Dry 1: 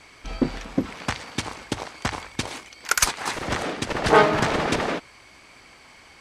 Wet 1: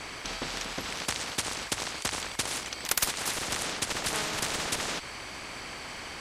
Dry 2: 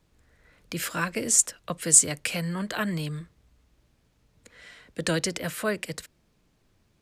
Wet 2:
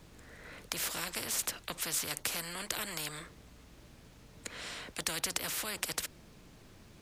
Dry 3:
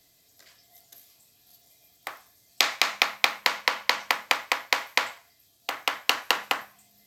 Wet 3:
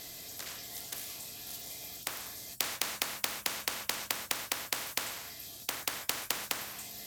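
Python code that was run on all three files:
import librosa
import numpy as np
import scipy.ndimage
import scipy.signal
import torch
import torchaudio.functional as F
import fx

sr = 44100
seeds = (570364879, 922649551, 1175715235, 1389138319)

y = fx.spectral_comp(x, sr, ratio=4.0)
y = F.gain(torch.from_numpy(y), -8.5).numpy()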